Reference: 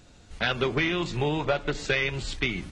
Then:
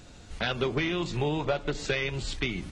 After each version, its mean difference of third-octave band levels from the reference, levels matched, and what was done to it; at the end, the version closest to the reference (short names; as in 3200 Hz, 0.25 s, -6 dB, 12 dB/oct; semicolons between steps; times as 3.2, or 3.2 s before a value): 1.5 dB: dynamic EQ 1800 Hz, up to -4 dB, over -39 dBFS, Q 0.92; in parallel at +2 dB: compressor, threshold -41 dBFS, peak gain reduction 18 dB; on the sum: gain -3 dB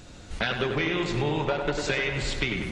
4.5 dB: compressor 3:1, threshold -34 dBFS, peak gain reduction 10.5 dB; tape echo 96 ms, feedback 81%, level -5 dB, low-pass 3000 Hz; gain +7 dB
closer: first